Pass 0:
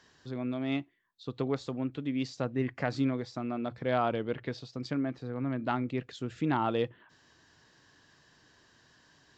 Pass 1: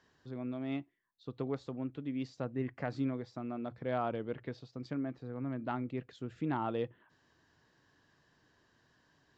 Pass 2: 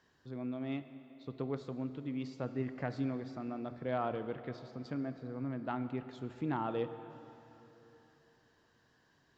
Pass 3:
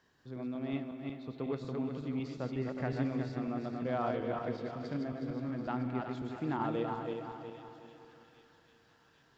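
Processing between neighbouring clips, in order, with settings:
high shelf 2500 Hz -8.5 dB; gain -5 dB
plate-style reverb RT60 3.4 s, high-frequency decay 0.85×, DRR 10 dB; gain -1 dB
regenerating reverse delay 0.183 s, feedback 63%, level -3.5 dB; thin delay 0.798 s, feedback 60%, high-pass 2900 Hz, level -9.5 dB

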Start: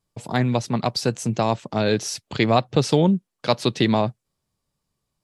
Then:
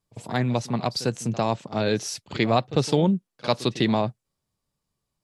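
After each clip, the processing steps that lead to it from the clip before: pre-echo 50 ms -17 dB; gain -3 dB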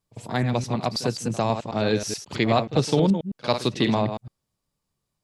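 reverse delay 0.107 s, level -7.5 dB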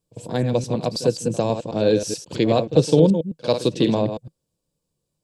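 thirty-one-band EQ 160 Hz +6 dB, 315 Hz +6 dB, 500 Hz +11 dB, 800 Hz -4 dB, 1250 Hz -9 dB, 2000 Hz -10 dB, 8000 Hz +5 dB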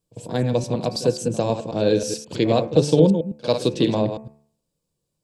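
de-hum 73.13 Hz, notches 35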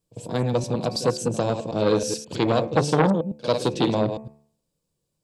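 core saturation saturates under 950 Hz

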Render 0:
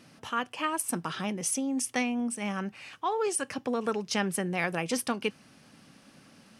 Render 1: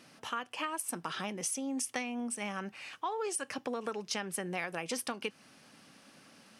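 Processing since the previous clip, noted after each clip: low shelf 200 Hz -11.5 dB; compressor, threshold -32 dBFS, peak gain reduction 9 dB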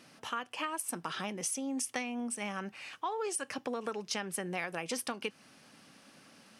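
nothing audible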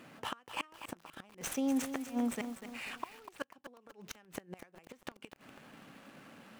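median filter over 9 samples; flipped gate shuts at -29 dBFS, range -28 dB; lo-fi delay 0.245 s, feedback 55%, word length 9-bit, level -9 dB; gain +5 dB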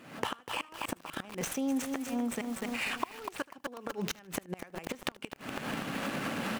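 recorder AGC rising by 66 dB/s; feedback echo 77 ms, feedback 29%, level -24 dB

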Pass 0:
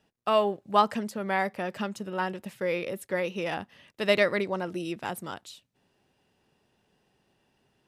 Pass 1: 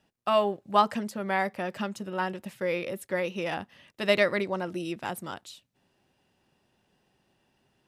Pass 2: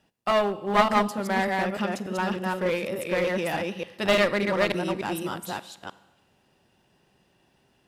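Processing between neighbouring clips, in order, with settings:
notch 440 Hz, Q 12
reverse delay 0.295 s, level -2 dB; Schroeder reverb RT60 1.1 s, combs from 32 ms, DRR 16.5 dB; one-sided clip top -25.5 dBFS; gain +3 dB

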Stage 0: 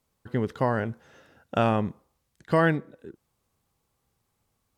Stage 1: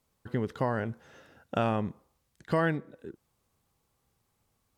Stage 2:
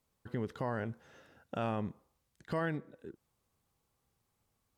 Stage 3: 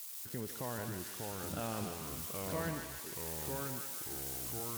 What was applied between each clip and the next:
compressor 1.5:1, threshold -32 dBFS, peak gain reduction 5.5 dB
limiter -20.5 dBFS, peak gain reduction 6 dB; gain -4.5 dB
switching spikes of -34 dBFS; thinning echo 0.149 s, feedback 70%, high-pass 980 Hz, level -3.5 dB; echoes that change speed 0.477 s, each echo -3 st, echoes 3; gain -5.5 dB

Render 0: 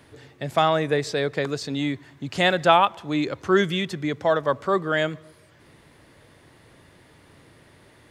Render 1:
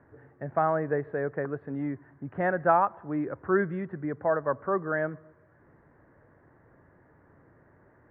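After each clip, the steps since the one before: elliptic low-pass 1700 Hz, stop band 70 dB; gain -5 dB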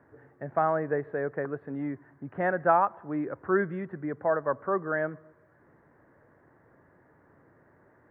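low shelf 87 Hz -11 dB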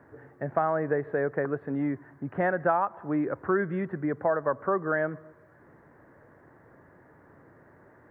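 compressor 3:1, threshold -28 dBFS, peak gain reduction 8.5 dB; gain +5 dB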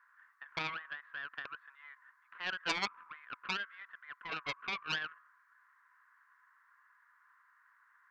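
rippled Chebyshev high-pass 1000 Hz, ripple 3 dB; Doppler distortion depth 0.6 ms; gain -2.5 dB

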